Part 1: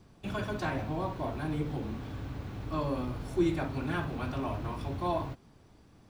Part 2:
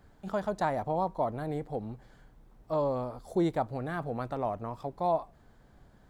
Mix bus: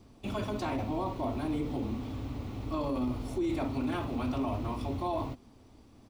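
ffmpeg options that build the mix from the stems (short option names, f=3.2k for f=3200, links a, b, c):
-filter_complex "[0:a]equalizer=f=160:t=o:w=0.33:g=-11,equalizer=f=250:t=o:w=0.33:g=7,equalizer=f=1.6k:t=o:w=0.33:g=-12,volume=1.5dB[a];[1:a]adelay=11,volume=-11.5dB[b];[a][b]amix=inputs=2:normalize=0,alimiter=level_in=0.5dB:limit=-24dB:level=0:latency=1:release=10,volume=-0.5dB"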